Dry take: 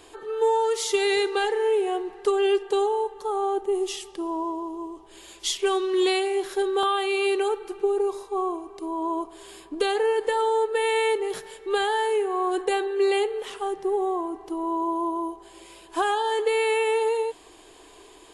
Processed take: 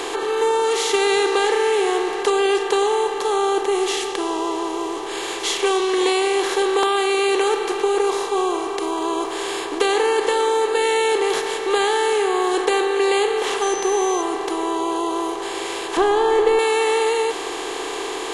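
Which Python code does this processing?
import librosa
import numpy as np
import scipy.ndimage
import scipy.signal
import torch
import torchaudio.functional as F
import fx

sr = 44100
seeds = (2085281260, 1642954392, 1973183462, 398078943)

y = fx.bin_compress(x, sr, power=0.4)
y = fx.quant_dither(y, sr, seeds[0], bits=10, dither='none', at=(8.85, 9.37))
y = fx.dmg_tone(y, sr, hz=6100.0, level_db=-30.0, at=(13.61, 14.21), fade=0.02)
y = fx.tilt_eq(y, sr, slope=-3.0, at=(15.97, 16.59))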